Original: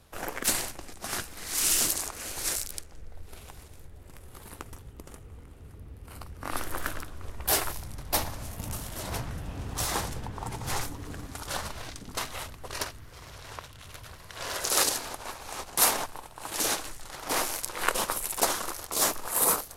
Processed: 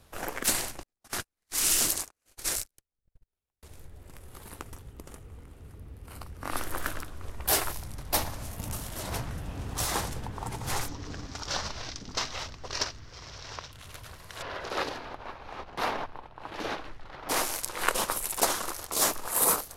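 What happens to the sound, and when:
0.83–3.63 s: gate -34 dBFS, range -46 dB
10.88–13.72 s: resonant high shelf 7.8 kHz -13.5 dB, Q 3
14.42–17.29 s: distance through air 310 m

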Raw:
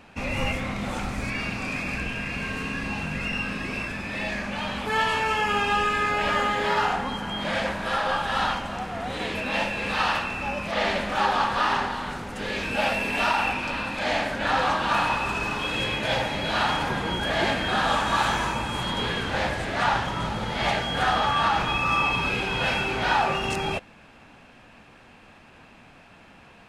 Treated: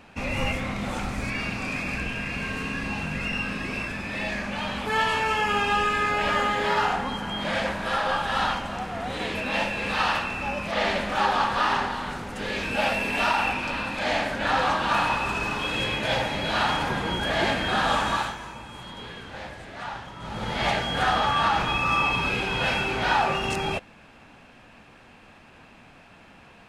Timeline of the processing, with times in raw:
18.06–20.49 s: dip -12 dB, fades 0.29 s

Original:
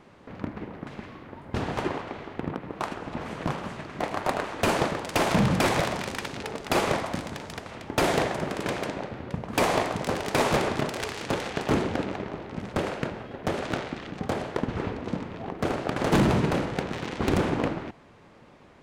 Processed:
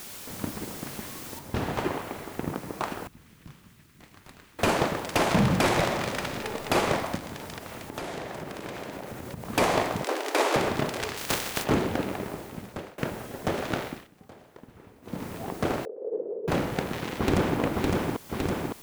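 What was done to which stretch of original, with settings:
1.39 s: noise floor step -42 dB -50 dB
3.07–4.59 s: amplifier tone stack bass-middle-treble 6-0-2
5.63–6.59 s: reverb throw, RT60 2.3 s, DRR 6 dB
7.16–9.45 s: compression, threshold -33 dBFS
10.04–10.56 s: steep high-pass 280 Hz 72 dB/octave
11.16–11.63 s: spectral contrast reduction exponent 0.43
12.28–12.98 s: fade out, to -23.5 dB
13.85–15.25 s: dip -20.5 dB, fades 0.23 s
15.85–16.48 s: Butterworth band-pass 460 Hz, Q 4.1
17.17–17.60 s: echo throw 560 ms, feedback 75%, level -2.5 dB

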